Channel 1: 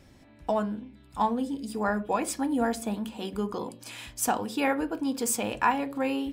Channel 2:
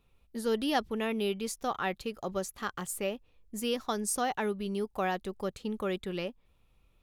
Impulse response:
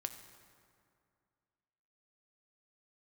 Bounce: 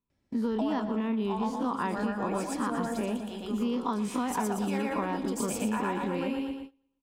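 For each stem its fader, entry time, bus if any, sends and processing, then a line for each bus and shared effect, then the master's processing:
+2.5 dB, 0.10 s, no send, echo send -8.5 dB, auto duck -10 dB, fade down 1.25 s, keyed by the second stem
-7.5 dB, 0.00 s, no send, echo send -18 dB, every event in the spectrogram widened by 60 ms; peaking EQ 10 kHz -12 dB 0.89 oct; small resonant body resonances 240/980 Hz, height 17 dB, ringing for 25 ms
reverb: none
echo: feedback delay 117 ms, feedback 49%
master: treble shelf 11 kHz -6.5 dB; gate -41 dBFS, range -22 dB; compression, threshold -26 dBFS, peak gain reduction 8 dB

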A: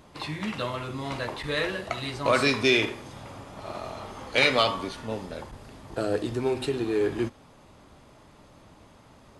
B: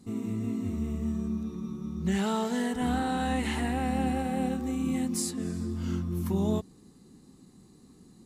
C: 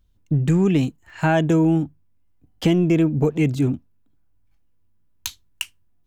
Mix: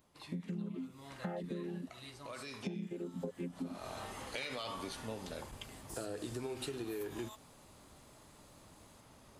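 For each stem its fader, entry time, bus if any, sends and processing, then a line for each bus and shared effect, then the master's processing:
3.09 s -19 dB -> 3.68 s -7 dB, 0.00 s, no send, treble shelf 4.9 kHz +5.5 dB; peak limiter -18 dBFS, peak gain reduction 9 dB
-4.5 dB, 0.75 s, no send, high-pass 960 Hz 24 dB/octave; peak limiter -31.5 dBFS, peak gain reduction 11 dB; auto duck -14 dB, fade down 1.20 s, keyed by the third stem
-9.0 dB, 0.00 s, no send, vocoder on a held chord minor triad, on F3; reverb removal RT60 1.2 s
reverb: none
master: treble shelf 11 kHz +12 dB; compression 16:1, threshold -37 dBFS, peak gain reduction 17 dB

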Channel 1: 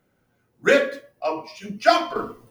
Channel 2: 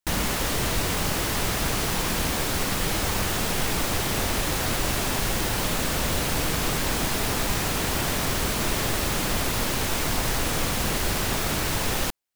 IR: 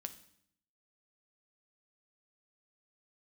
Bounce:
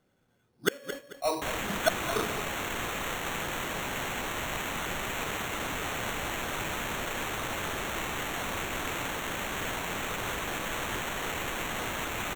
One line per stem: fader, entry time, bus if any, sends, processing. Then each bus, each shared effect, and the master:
-4.0 dB, 0.00 s, no send, echo send -11.5 dB, inverted gate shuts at -6 dBFS, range -26 dB
-4.5 dB, 1.35 s, no send, no echo send, pre-emphasis filter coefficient 0.8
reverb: none
echo: feedback delay 220 ms, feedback 34%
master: sample-and-hold 9×

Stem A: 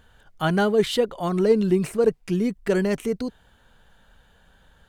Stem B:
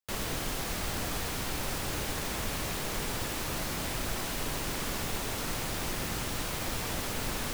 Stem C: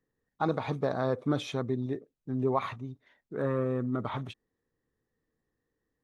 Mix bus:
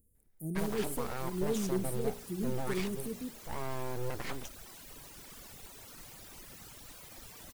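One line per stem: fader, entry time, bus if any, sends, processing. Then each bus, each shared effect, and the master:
-5.0 dB, 0.00 s, no send, inverse Chebyshev band-stop 1–4 kHz, stop band 60 dB; bass shelf 350 Hz -9.5 dB; de-hum 58.92 Hz, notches 28
-16.0 dB, 0.50 s, no send, reverb removal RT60 1.8 s
-1.0 dB, 0.15 s, no send, full-wave rectifier; peak limiter -24.5 dBFS, peak gain reduction 9.5 dB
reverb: none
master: treble shelf 5.7 kHz +8.5 dB

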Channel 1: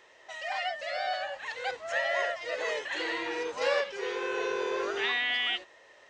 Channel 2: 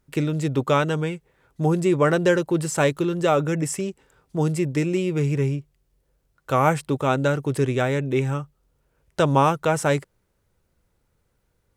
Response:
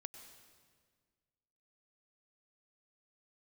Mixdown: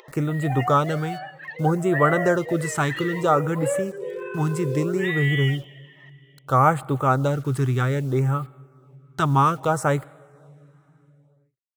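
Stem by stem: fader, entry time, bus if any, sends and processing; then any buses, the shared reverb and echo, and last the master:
0.0 dB, 0.00 s, send -3 dB, spectral contrast enhancement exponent 2.1
-3.5 dB, 0.00 s, send -10 dB, graphic EQ with 31 bands 125 Hz +8 dB, 800 Hz +4 dB, 1.25 kHz +10 dB, 2.5 kHz -6 dB, 5 kHz -3 dB; bit crusher 8-bit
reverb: on, RT60 1.7 s, pre-delay 90 ms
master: upward compressor, threshold -38 dBFS; LFO notch sine 0.62 Hz 510–5900 Hz

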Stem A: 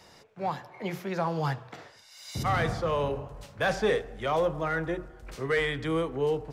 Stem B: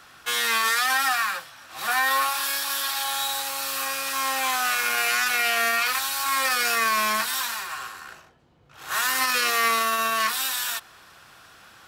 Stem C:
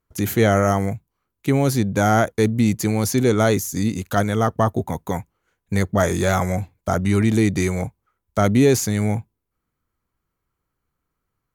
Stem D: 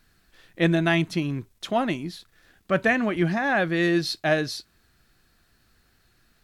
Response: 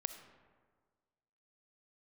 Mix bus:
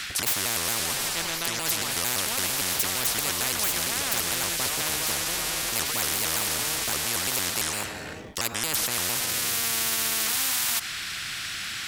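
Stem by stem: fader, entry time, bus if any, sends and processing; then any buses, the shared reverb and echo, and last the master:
-1.5 dB, 0.40 s, no send, echo send -10 dB, compression, threshold -32 dBFS, peak gain reduction 10.5 dB
-5.5 dB, 0.00 s, no send, no echo send, graphic EQ 500/1000/2000/4000/8000 Hz -11/-12/+11/+5/+6 dB; auto duck -16 dB, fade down 0.40 s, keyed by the third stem
-9.0 dB, 0.00 s, send -7.5 dB, no echo send, vibrato with a chosen wave square 4.4 Hz, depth 250 cents
-5.0 dB, 0.55 s, no send, no echo send, none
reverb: on, RT60 1.6 s, pre-delay 20 ms
echo: feedback delay 364 ms, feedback 58%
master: spectrum-flattening compressor 10:1

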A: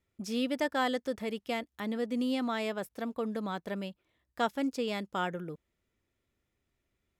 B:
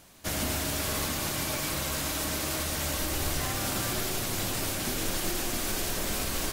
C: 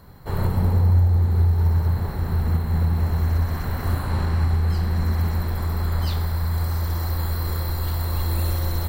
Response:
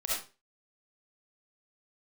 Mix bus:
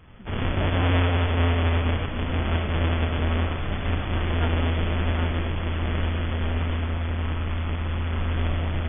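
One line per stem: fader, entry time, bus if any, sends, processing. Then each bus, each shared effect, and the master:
-7.0 dB, 0.00 s, no send, none
-3.0 dB, 0.35 s, no send, rotary cabinet horn 7 Hz
-11.0 dB, 0.00 s, send -8 dB, square wave that keeps the level; treble shelf 2 kHz +9.5 dB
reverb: on, RT60 0.35 s, pre-delay 25 ms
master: brick-wall FIR low-pass 3.5 kHz

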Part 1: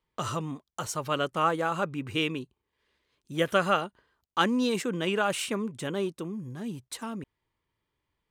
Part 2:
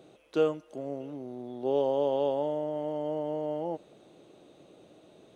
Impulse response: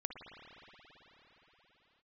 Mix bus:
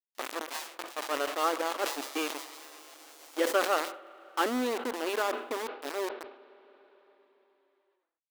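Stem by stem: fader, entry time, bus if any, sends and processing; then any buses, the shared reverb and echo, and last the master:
-2.0 dB, 0.00 s, send -13 dB, low-pass 1.3 kHz 6 dB/octave; small samples zeroed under -28 dBFS
-5.0 dB, 0.15 s, no send, square wave that keeps the level; spectral gate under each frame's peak -25 dB weak; peaking EQ 810 Hz +10.5 dB 2.4 oct; auto duck -8 dB, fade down 1.00 s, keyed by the first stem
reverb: on, pre-delay 53 ms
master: brick-wall FIR high-pass 240 Hz; decay stretcher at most 95 dB/s

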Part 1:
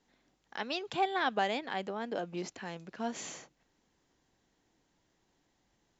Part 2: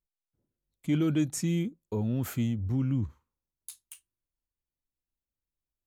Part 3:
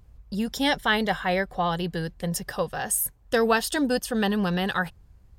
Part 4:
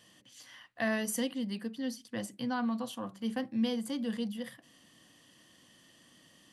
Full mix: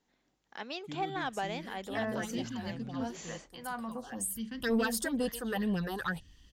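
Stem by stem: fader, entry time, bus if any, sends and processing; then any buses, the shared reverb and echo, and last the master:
-4.0 dB, 0.00 s, no send, none
-16.5 dB, 0.00 s, no send, none
3.92 s -17.5 dB -> 4.53 s -5.5 dB, 1.30 s, no send, treble shelf 9 kHz +5 dB; phase shifter stages 6, 2.1 Hz, lowest notch 140–1700 Hz
-1.5 dB, 1.15 s, no send, low-pass 6.7 kHz 24 dB/octave; lamp-driven phase shifter 0.53 Hz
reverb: none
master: saturation -21.5 dBFS, distortion -19 dB

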